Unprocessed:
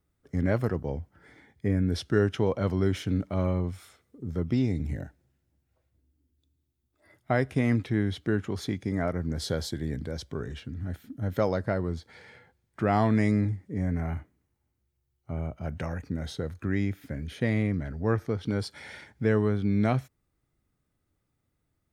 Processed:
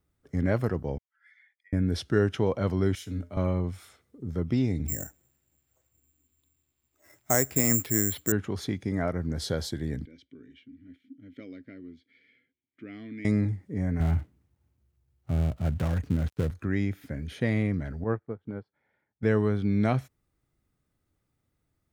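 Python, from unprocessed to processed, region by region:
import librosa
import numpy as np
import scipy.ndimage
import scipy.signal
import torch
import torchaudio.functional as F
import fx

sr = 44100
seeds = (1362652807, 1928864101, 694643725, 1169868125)

y = fx.chain(x, sr, fx.spec_expand(power=1.6),
    fx.cheby2_highpass(hz=370.0, order=4, stop_db=70), at=(0.98, 1.73))
y = fx.chain(y, sr, fx.high_shelf(hz=4300.0, db=10.5),
    fx.comb_fb(f0_hz=86.0, decay_s=0.26, harmonics='odd', damping=0.0, mix_pct=70),
    fx.band_widen(depth_pct=40), at=(2.95, 3.37))
y = fx.chain(y, sr, fx.resample_bad(factor=6, down='none', up='zero_stuff'),
    fx.bass_treble(bass_db=-4, treble_db=-10), at=(4.88, 8.32))
y = fx.chain(y, sr, fx.vowel_filter(vowel='i'),
    fx.peak_eq(hz=200.0, db=-5.5, octaves=0.95), at=(10.05, 13.25))
y = fx.chain(y, sr, fx.dead_time(dead_ms=0.23),
    fx.highpass(hz=60.0, slope=12),
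    fx.low_shelf(hz=170.0, db=11.5), at=(14.0, 16.51))
y = fx.chain(y, sr, fx.lowpass(hz=1500.0, slope=12),
    fx.peak_eq(hz=72.0, db=-6.0, octaves=0.86),
    fx.upward_expand(threshold_db=-40.0, expansion=2.5), at=(18.04, 19.23))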